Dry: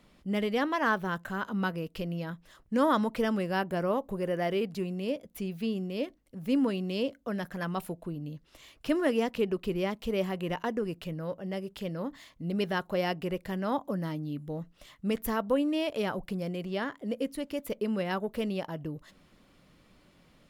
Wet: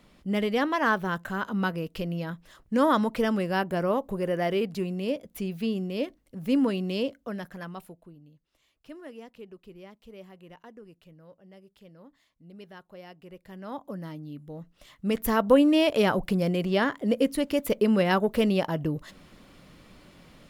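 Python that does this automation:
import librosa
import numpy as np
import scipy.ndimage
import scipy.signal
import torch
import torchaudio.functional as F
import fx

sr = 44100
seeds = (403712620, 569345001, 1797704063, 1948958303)

y = fx.gain(x, sr, db=fx.line((6.93, 3.0), (7.58, -4.0), (8.33, -16.5), (13.15, -16.5), (13.89, -4.5), (14.53, -4.5), (15.52, 8.5)))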